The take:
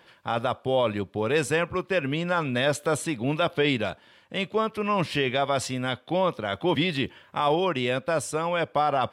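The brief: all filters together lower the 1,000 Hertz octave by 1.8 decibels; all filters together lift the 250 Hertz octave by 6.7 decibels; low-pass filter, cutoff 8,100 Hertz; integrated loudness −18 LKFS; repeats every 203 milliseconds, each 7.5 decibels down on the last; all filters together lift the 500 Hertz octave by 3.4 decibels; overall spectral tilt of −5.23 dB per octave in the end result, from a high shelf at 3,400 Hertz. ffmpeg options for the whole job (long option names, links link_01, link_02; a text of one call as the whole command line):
ffmpeg -i in.wav -af "lowpass=8100,equalizer=frequency=250:width_type=o:gain=8,equalizer=frequency=500:width_type=o:gain=3,equalizer=frequency=1000:width_type=o:gain=-4,highshelf=frequency=3400:gain=-4,aecho=1:1:203|406|609|812|1015:0.422|0.177|0.0744|0.0312|0.0131,volume=4.5dB" out.wav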